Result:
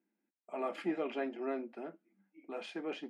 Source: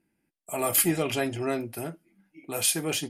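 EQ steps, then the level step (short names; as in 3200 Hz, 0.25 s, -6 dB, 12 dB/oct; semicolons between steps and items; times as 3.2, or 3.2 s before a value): elliptic high-pass 200 Hz, stop band 40 dB; LPF 2100 Hz 12 dB/oct; air absorption 59 m; -7.5 dB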